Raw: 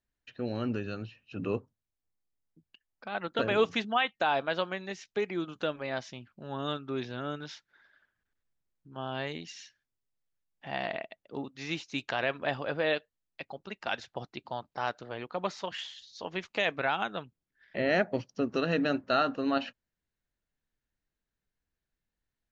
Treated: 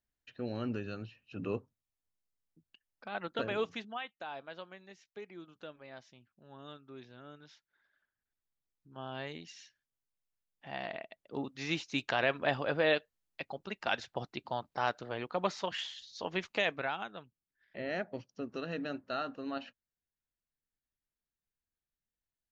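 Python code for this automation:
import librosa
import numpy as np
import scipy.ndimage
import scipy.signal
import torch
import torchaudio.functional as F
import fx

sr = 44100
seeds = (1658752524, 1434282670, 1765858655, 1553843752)

y = fx.gain(x, sr, db=fx.line((3.27, -4.0), (4.17, -15.5), (7.35, -15.5), (8.97, -6.0), (11.0, -6.0), (11.45, 0.5), (16.47, 0.5), (17.11, -10.0)))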